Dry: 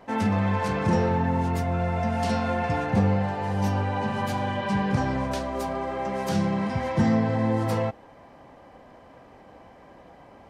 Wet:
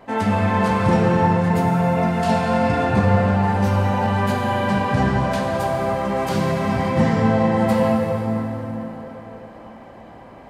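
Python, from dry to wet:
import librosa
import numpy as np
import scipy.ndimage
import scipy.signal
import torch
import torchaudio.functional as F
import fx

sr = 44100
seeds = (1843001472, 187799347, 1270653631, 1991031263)

y = fx.peak_eq(x, sr, hz=5700.0, db=-5.0, octaves=0.33)
y = fx.rev_plate(y, sr, seeds[0], rt60_s=4.5, hf_ratio=0.65, predelay_ms=0, drr_db=-1.5)
y = y * 10.0 ** (3.5 / 20.0)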